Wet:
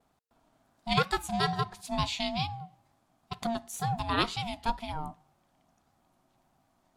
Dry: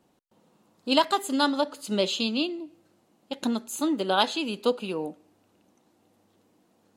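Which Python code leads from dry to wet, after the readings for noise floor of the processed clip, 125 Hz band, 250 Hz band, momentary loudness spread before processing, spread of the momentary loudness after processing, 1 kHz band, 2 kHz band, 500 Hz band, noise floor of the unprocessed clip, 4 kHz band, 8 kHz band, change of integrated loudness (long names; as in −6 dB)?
−72 dBFS, +9.0 dB, −9.0 dB, 13 LU, 14 LU, −2.5 dB, −2.5 dB, −9.0 dB, −67 dBFS, −5.5 dB, −5.0 dB, −5.0 dB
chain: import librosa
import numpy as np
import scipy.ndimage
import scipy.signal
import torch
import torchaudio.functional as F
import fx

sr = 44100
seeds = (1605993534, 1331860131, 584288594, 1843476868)

y = fx.wow_flutter(x, sr, seeds[0], rate_hz=2.1, depth_cents=86.0)
y = y * np.sin(2.0 * np.pi * 460.0 * np.arange(len(y)) / sr)
y = F.gain(torch.from_numpy(y), -2.0).numpy()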